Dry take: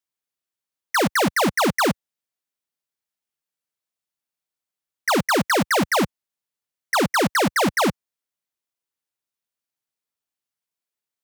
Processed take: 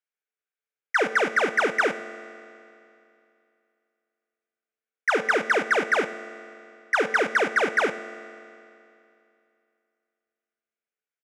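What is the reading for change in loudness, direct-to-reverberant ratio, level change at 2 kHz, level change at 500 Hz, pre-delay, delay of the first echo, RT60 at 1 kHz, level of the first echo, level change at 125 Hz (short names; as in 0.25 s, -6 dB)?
-2.5 dB, 9.5 dB, +1.5 dB, -2.0 dB, 4 ms, 95 ms, 2.7 s, -19.0 dB, -19.5 dB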